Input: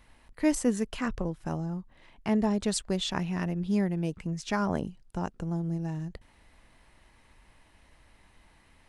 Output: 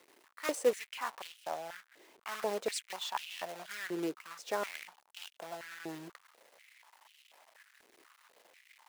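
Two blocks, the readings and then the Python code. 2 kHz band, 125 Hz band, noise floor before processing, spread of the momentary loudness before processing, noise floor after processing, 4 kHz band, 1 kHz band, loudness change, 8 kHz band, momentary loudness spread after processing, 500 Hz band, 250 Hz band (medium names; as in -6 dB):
-2.0 dB, -26.5 dB, -62 dBFS, 10 LU, -72 dBFS, -4.0 dB, -3.0 dB, -8.0 dB, -6.0 dB, 16 LU, -2.5 dB, -17.0 dB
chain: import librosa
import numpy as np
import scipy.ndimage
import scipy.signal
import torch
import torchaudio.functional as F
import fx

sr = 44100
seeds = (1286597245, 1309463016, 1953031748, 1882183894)

y = fx.quant_companded(x, sr, bits=4)
y = fx.filter_held_highpass(y, sr, hz=4.1, low_hz=370.0, high_hz=2900.0)
y = F.gain(torch.from_numpy(y), -8.0).numpy()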